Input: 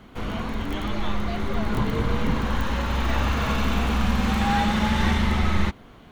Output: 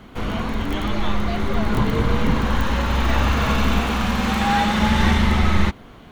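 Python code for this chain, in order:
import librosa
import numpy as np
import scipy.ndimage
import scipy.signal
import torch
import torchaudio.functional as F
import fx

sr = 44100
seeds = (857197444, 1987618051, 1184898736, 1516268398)

y = fx.low_shelf(x, sr, hz=160.0, db=-7.0, at=(3.8, 4.79))
y = F.gain(torch.from_numpy(y), 4.5).numpy()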